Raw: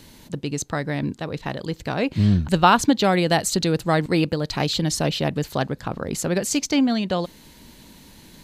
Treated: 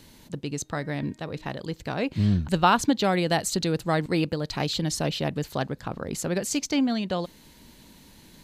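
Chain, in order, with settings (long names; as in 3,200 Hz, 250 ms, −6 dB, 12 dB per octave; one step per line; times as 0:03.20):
0:00.61–0:01.46: hum removal 310.7 Hz, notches 12
level −4.5 dB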